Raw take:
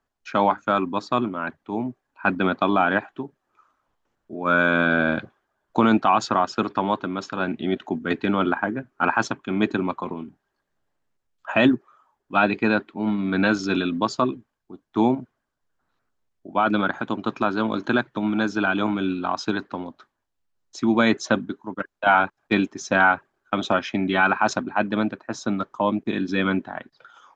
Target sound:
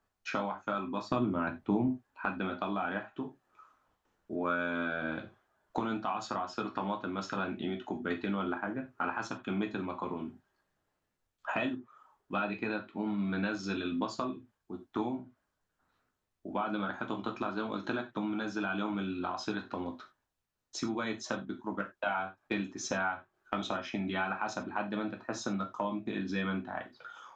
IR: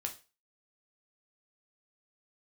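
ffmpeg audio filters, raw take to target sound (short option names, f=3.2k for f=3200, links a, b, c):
-filter_complex "[0:a]acompressor=threshold=-31dB:ratio=6,asettb=1/sr,asplit=3[a][b][c];[a]atrim=end=1.114[d];[b]atrim=start=1.11:end=1.88,asetpts=PTS-STARTPTS,afade=t=in:d=0.004:c=qsin,afade=t=out:st=0.766:d=0.004:c=qsin,lowshelf=f=340:g=11.5[e];[c]atrim=start=1.876[f];[d][e]acrossfade=d=0.004:c1=hsin:c2=qsin[g];[g][f]acrossfade=d=0.004:c1=qsin:c2=hsin[h];[1:a]atrim=start_sample=2205,afade=t=out:st=0.15:d=0.01,atrim=end_sample=7056[i];[h][i]afir=irnorm=-1:irlink=0"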